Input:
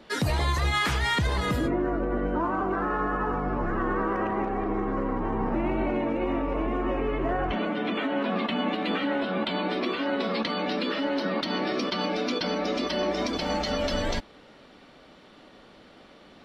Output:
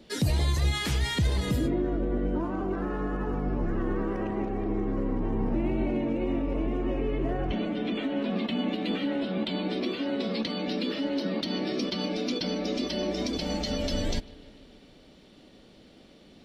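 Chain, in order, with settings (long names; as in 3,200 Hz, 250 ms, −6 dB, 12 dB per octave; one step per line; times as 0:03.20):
parametric band 1,200 Hz −14 dB 2 octaves
on a send: bucket-brigade delay 149 ms, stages 4,096, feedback 70%, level −21.5 dB
on the sum: level +2 dB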